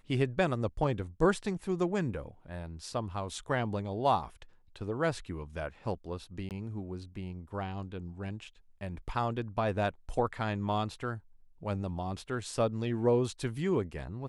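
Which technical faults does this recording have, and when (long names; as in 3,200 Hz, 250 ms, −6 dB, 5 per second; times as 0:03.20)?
0:06.49–0:06.51: drop-out 18 ms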